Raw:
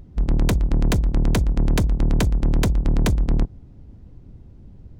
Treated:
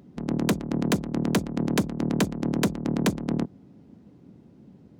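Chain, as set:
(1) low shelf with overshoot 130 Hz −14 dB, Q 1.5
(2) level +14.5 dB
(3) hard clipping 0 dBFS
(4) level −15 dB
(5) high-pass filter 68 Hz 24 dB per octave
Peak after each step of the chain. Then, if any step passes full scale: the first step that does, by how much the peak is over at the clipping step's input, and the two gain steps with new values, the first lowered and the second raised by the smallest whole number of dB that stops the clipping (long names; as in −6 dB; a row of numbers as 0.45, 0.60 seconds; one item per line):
−9.5, +5.0, 0.0, −15.0, −12.5 dBFS
step 2, 5.0 dB
step 2 +9.5 dB, step 4 −10 dB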